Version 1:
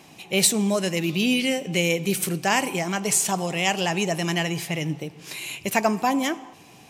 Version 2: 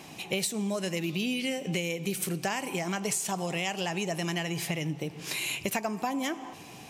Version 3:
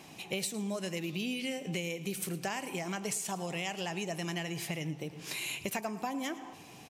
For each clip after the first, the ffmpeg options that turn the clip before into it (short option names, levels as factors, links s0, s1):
-af "acompressor=threshold=0.0316:ratio=10,volume=1.33"
-af "aecho=1:1:110:0.133,volume=0.562"